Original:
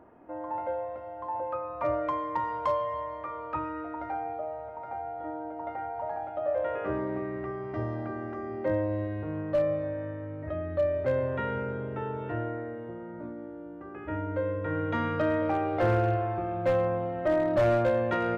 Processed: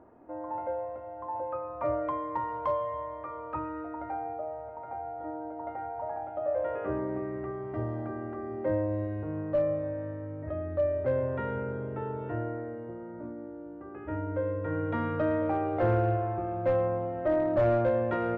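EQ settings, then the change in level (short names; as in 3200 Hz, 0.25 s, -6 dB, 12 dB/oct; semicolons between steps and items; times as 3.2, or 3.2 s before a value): LPF 1200 Hz 6 dB/oct; bell 180 Hz -5.5 dB 0.22 oct; 0.0 dB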